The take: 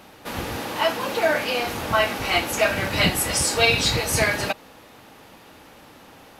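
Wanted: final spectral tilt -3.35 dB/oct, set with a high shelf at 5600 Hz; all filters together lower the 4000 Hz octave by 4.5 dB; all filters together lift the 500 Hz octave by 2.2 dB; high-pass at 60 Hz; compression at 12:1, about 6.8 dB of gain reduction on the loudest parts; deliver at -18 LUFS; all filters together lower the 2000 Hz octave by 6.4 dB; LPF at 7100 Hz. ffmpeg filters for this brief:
-af "highpass=60,lowpass=7.1k,equalizer=f=500:t=o:g=3.5,equalizer=f=2k:t=o:g=-8,equalizer=f=4k:t=o:g=-5.5,highshelf=f=5.6k:g=7.5,acompressor=threshold=-21dB:ratio=12,volume=8.5dB"

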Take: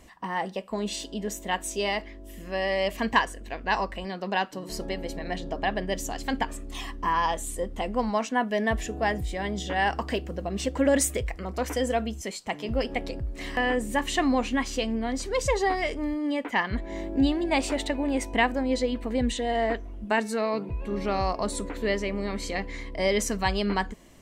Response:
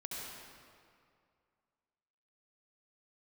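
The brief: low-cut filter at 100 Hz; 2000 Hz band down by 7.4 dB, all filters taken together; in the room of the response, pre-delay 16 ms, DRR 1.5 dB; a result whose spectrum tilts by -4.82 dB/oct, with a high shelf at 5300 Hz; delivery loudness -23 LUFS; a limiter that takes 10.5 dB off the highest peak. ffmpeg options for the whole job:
-filter_complex "[0:a]highpass=100,equalizer=f=2k:t=o:g=-8,highshelf=f=5.3k:g=-6,alimiter=limit=-23dB:level=0:latency=1,asplit=2[a][b];[1:a]atrim=start_sample=2205,adelay=16[c];[b][c]afir=irnorm=-1:irlink=0,volume=-2dB[d];[a][d]amix=inputs=2:normalize=0,volume=8dB"

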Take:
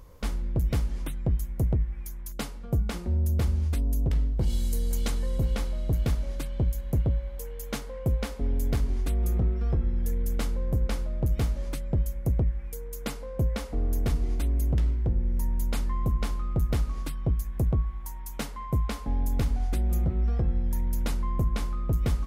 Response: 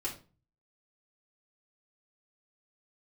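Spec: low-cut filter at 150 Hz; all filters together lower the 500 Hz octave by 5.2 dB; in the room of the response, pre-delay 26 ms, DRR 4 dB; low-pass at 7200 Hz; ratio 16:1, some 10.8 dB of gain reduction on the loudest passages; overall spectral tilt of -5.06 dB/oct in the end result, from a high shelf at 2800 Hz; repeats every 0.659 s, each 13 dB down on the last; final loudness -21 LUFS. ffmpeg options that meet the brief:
-filter_complex "[0:a]highpass=150,lowpass=7.2k,equalizer=f=500:t=o:g=-6.5,highshelf=f=2.8k:g=4,acompressor=threshold=-38dB:ratio=16,aecho=1:1:659|1318|1977:0.224|0.0493|0.0108,asplit=2[a][b];[1:a]atrim=start_sample=2205,adelay=26[c];[b][c]afir=irnorm=-1:irlink=0,volume=-6.5dB[d];[a][d]amix=inputs=2:normalize=0,volume=21.5dB"

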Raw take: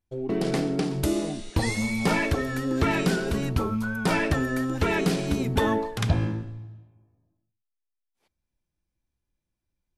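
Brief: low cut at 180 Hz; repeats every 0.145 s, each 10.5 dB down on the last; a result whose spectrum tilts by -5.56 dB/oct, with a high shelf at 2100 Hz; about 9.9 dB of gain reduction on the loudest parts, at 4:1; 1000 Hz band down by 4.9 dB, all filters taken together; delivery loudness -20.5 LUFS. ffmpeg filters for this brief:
-af "highpass=180,equalizer=f=1k:t=o:g=-5.5,highshelf=f=2.1k:g=-3.5,acompressor=threshold=-34dB:ratio=4,aecho=1:1:145|290|435:0.299|0.0896|0.0269,volume=15.5dB"

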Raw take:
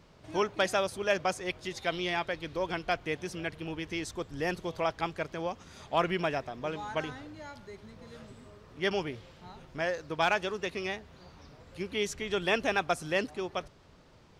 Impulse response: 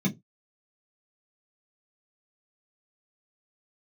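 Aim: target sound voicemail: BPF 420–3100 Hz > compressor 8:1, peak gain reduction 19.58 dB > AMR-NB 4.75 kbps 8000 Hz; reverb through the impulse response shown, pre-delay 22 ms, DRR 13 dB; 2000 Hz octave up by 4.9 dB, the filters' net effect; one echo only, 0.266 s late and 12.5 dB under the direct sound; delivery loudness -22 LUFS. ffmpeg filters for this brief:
-filter_complex "[0:a]equalizer=f=2k:t=o:g=7,aecho=1:1:266:0.237,asplit=2[a][b];[1:a]atrim=start_sample=2205,adelay=22[c];[b][c]afir=irnorm=-1:irlink=0,volume=-19.5dB[d];[a][d]amix=inputs=2:normalize=0,highpass=420,lowpass=3.1k,acompressor=threshold=-40dB:ratio=8,volume=24.5dB" -ar 8000 -c:a libopencore_amrnb -b:a 4750

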